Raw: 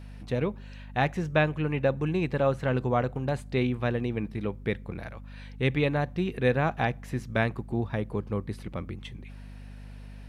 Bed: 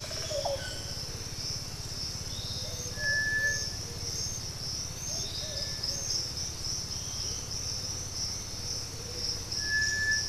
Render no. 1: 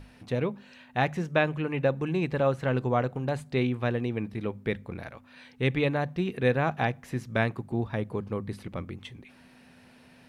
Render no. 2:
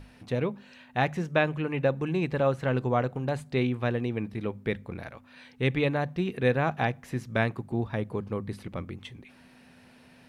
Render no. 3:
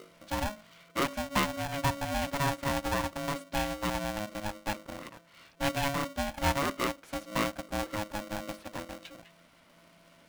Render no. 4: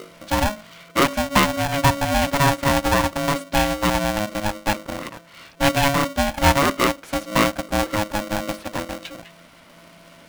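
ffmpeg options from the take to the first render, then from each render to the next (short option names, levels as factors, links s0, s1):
-af "bandreject=f=50:t=h:w=6,bandreject=f=100:t=h:w=6,bandreject=f=150:t=h:w=6,bandreject=f=200:t=h:w=6"
-af anull
-af "flanger=delay=1:depth=1.1:regen=-73:speed=1.2:shape=sinusoidal,aeval=exprs='val(0)*sgn(sin(2*PI*420*n/s))':c=same"
-af "volume=3.98,alimiter=limit=0.708:level=0:latency=1"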